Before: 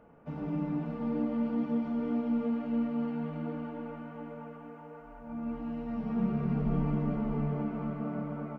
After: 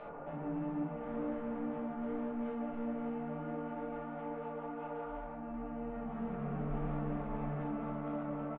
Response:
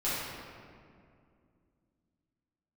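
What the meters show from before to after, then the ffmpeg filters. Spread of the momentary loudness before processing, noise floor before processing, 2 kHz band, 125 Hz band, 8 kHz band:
13 LU, -49 dBFS, -1.0 dB, -8.0 dB, no reading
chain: -filter_complex "[0:a]tiltshelf=f=900:g=7,acompressor=mode=upward:threshold=0.0398:ratio=2.5,acrossover=split=550 2800:gain=0.112 1 0.0708[s0][s1][s2];[s0][s1][s2]amix=inputs=3:normalize=0,aresample=11025,asoftclip=type=tanh:threshold=0.0119,aresample=44100,aresample=8000,aresample=44100[s3];[1:a]atrim=start_sample=2205,atrim=end_sample=3969[s4];[s3][s4]afir=irnorm=-1:irlink=0,volume=0.794"

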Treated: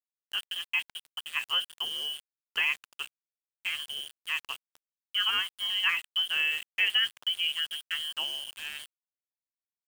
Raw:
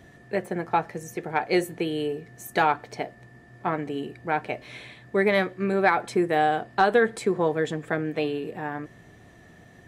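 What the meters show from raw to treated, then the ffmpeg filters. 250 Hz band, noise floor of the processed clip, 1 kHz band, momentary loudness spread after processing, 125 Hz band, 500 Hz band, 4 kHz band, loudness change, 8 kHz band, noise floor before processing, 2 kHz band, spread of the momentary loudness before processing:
under -30 dB, under -85 dBFS, -18.5 dB, 14 LU, under -30 dB, -32.5 dB, +13.5 dB, -3.5 dB, -1.5 dB, -52 dBFS, -1.5 dB, 13 LU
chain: -af "lowpass=f=2900:t=q:w=0.5098,lowpass=f=2900:t=q:w=0.6013,lowpass=f=2900:t=q:w=0.9,lowpass=f=2900:t=q:w=2.563,afreqshift=-3400,aeval=exprs='val(0)*gte(abs(val(0)),0.0251)':c=same,volume=0.473"

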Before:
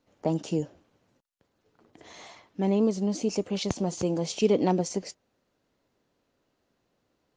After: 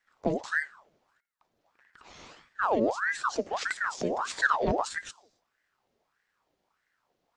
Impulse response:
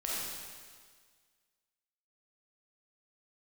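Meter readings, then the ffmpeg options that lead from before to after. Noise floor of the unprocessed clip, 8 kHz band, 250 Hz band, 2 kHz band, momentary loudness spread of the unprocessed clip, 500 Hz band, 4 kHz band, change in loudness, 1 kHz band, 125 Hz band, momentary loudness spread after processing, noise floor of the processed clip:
-76 dBFS, -4.0 dB, -9.0 dB, +17.5 dB, 19 LU, -4.0 dB, -3.0 dB, -1.5 dB, +6.5 dB, -10.5 dB, 10 LU, -80 dBFS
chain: -filter_complex "[0:a]asplit=2[s0][s1];[1:a]atrim=start_sample=2205,afade=t=out:st=0.35:d=0.01,atrim=end_sample=15876[s2];[s1][s2]afir=irnorm=-1:irlink=0,volume=0.0501[s3];[s0][s3]amix=inputs=2:normalize=0,afreqshift=-390,aeval=exprs='val(0)*sin(2*PI*1100*n/s+1100*0.65/1.6*sin(2*PI*1.6*n/s))':c=same"

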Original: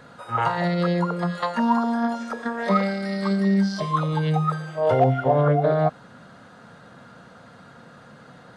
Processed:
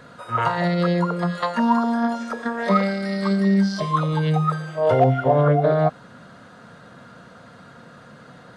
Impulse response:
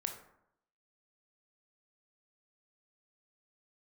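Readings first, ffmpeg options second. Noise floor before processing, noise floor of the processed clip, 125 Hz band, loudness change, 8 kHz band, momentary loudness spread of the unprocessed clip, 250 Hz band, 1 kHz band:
-48 dBFS, -46 dBFS, +2.0 dB, +2.0 dB, no reading, 7 LU, +2.0 dB, +1.5 dB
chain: -af "bandreject=f=820:w=12,volume=1.26"

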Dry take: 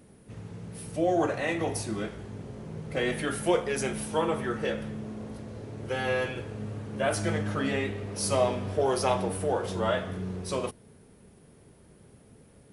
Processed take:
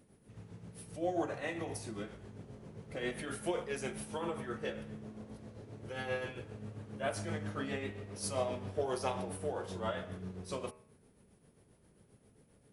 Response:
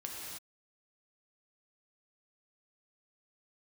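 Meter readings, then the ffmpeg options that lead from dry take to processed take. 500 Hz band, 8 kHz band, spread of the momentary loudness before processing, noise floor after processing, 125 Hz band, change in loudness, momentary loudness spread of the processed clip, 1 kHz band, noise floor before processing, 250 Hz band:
-10.0 dB, -9.5 dB, 14 LU, -67 dBFS, -9.5 dB, -10.0 dB, 14 LU, -10.0 dB, -56 dBFS, -9.5 dB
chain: -af "tremolo=f=7.5:d=0.53,bandreject=f=78.46:t=h:w=4,bandreject=f=156.92:t=h:w=4,bandreject=f=235.38:t=h:w=4,bandreject=f=313.84:t=h:w=4,bandreject=f=392.3:t=h:w=4,bandreject=f=470.76:t=h:w=4,bandreject=f=549.22:t=h:w=4,bandreject=f=627.68:t=h:w=4,bandreject=f=706.14:t=h:w=4,bandreject=f=784.6:t=h:w=4,bandreject=f=863.06:t=h:w=4,bandreject=f=941.52:t=h:w=4,bandreject=f=1019.98:t=h:w=4,bandreject=f=1098.44:t=h:w=4,bandreject=f=1176.9:t=h:w=4,bandreject=f=1255.36:t=h:w=4,bandreject=f=1333.82:t=h:w=4,bandreject=f=1412.28:t=h:w=4,bandreject=f=1490.74:t=h:w=4,bandreject=f=1569.2:t=h:w=4,bandreject=f=1647.66:t=h:w=4,bandreject=f=1726.12:t=h:w=4,bandreject=f=1804.58:t=h:w=4,bandreject=f=1883.04:t=h:w=4,bandreject=f=1961.5:t=h:w=4,bandreject=f=2039.96:t=h:w=4,bandreject=f=2118.42:t=h:w=4,bandreject=f=2196.88:t=h:w=4,bandreject=f=2275.34:t=h:w=4,bandreject=f=2353.8:t=h:w=4,bandreject=f=2432.26:t=h:w=4,bandreject=f=2510.72:t=h:w=4,bandreject=f=2589.18:t=h:w=4,bandreject=f=2667.64:t=h:w=4,bandreject=f=2746.1:t=h:w=4,bandreject=f=2824.56:t=h:w=4,volume=0.447"

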